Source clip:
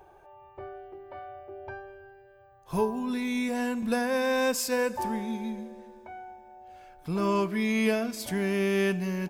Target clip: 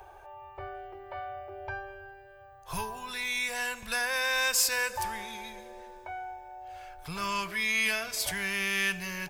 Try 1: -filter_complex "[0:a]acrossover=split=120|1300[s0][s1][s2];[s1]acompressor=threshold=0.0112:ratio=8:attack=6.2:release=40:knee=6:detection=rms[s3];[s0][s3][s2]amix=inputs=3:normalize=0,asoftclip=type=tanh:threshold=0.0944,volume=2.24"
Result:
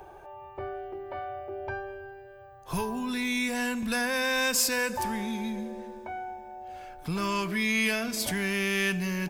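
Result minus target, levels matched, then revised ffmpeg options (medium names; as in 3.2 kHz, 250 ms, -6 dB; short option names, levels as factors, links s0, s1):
500 Hz band +5.5 dB
-filter_complex "[0:a]acrossover=split=120|1300[s0][s1][s2];[s1]acompressor=threshold=0.0112:ratio=8:attack=6.2:release=40:knee=6:detection=rms,highpass=600[s3];[s0][s3][s2]amix=inputs=3:normalize=0,asoftclip=type=tanh:threshold=0.0944,volume=2.24"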